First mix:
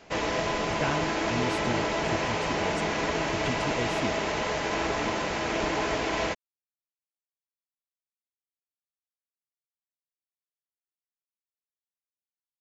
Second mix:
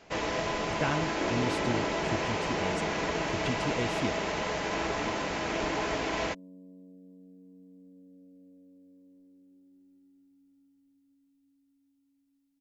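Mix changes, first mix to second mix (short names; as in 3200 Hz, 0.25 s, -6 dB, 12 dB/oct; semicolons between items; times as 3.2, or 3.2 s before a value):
first sound -3.0 dB; second sound: unmuted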